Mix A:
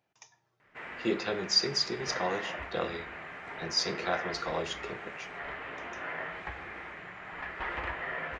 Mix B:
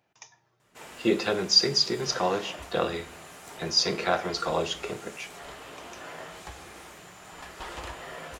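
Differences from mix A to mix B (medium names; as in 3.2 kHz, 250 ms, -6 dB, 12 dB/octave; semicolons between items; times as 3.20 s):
speech +6.0 dB; background: remove resonant low-pass 2 kHz, resonance Q 2.9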